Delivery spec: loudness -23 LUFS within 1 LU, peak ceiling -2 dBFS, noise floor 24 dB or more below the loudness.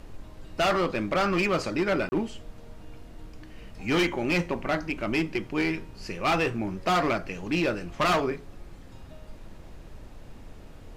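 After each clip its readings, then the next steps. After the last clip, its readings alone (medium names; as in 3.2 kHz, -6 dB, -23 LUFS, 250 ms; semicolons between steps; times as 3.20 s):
dropouts 1; longest dropout 30 ms; noise floor -46 dBFS; noise floor target -51 dBFS; loudness -27.0 LUFS; peak level -17.5 dBFS; loudness target -23.0 LUFS
-> interpolate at 2.09 s, 30 ms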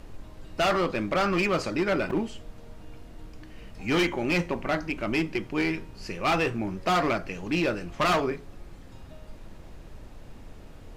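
dropouts 0; noise floor -46 dBFS; noise floor target -51 dBFS
-> noise print and reduce 6 dB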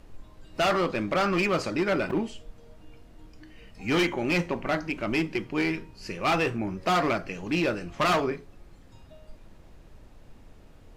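noise floor -52 dBFS; loudness -27.0 LUFS; peak level -18.0 dBFS; loudness target -23.0 LUFS
-> trim +4 dB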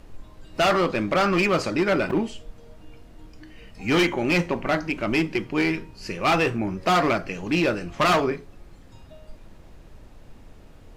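loudness -23.0 LUFS; peak level -14.0 dBFS; noise floor -48 dBFS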